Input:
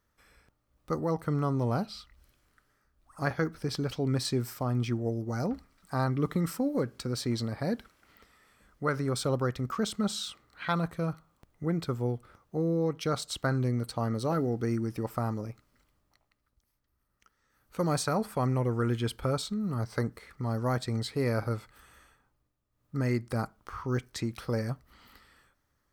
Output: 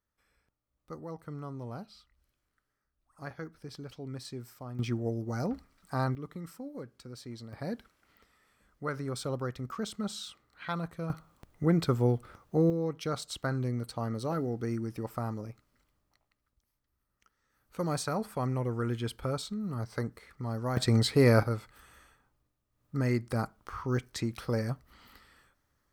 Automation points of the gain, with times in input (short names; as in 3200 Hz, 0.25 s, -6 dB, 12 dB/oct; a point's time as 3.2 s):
-12 dB
from 4.79 s -1.5 dB
from 6.15 s -13 dB
from 7.53 s -5.5 dB
from 11.1 s +4.5 dB
from 12.7 s -3.5 dB
from 20.77 s +7 dB
from 21.43 s 0 dB